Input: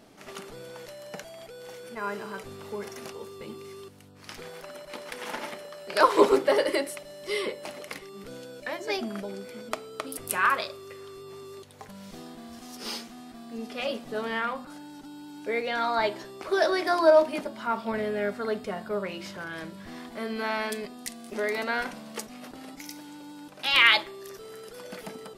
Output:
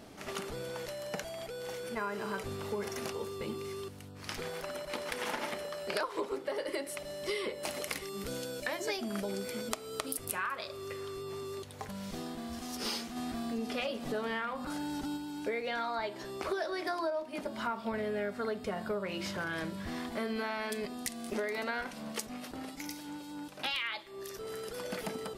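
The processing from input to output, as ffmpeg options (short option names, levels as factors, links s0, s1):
-filter_complex "[0:a]asettb=1/sr,asplit=3[s0][s1][s2];[s0]atrim=end=7.634[s3];[s1]atrim=start=7.63:end=10.25,asetpts=PTS-STARTPTS,afade=t=in:d=0.004:c=qsin,afade=t=out:st=2.616:d=0.004:c=qsin,highshelf=f=4600:g=8.5[s4];[s2]atrim=start=10.246[s5];[s3][s4]acrossfade=d=0.004:c1=hsin:c2=qsin[s6];[s6][s5]acrossfade=d=0.004:c1=qsin:c2=hsin,asplit=3[s7][s8][s9];[s7]afade=t=out:st=13.15:d=0.02[s10];[s8]acompressor=mode=upward:threshold=0.0224:ratio=2.5:attack=3.2:release=140:knee=2.83:detection=peak,afade=t=in:st=13.15:d=0.02,afade=t=out:st=15.16:d=0.02[s11];[s9]afade=t=in:st=15.16:d=0.02[s12];[s10][s11][s12]amix=inputs=3:normalize=0,asettb=1/sr,asplit=3[s13][s14][s15];[s13]atrim=end=21.814[s16];[s14]atrim=start=21.81:end=24.47,asetpts=PTS-STARTPTS,afade=t=in:d=0.004:c=qsin,afade=t=out:st=2.656:d=0.004:c=qsin,acrossover=split=2200[s17][s18];[s17]aeval=exprs='val(0)*(1-0.5/2+0.5/2*cos(2*PI*3.8*n/s))':c=same[s19];[s18]aeval=exprs='val(0)*(1-0.5/2-0.5/2*cos(2*PI*3.8*n/s))':c=same[s20];[s19][s20]amix=inputs=2:normalize=0[s21];[s15]atrim=start=24.466[s22];[s16][s21]acrossfade=d=0.004:c1=hsin:c2=qsin[s23];[s23][s22]acrossfade=d=0.004:c1=qsin:c2=hsin,acompressor=threshold=0.02:ratio=16,equalizer=f=66:w=1.5:g=9,volume=1.33"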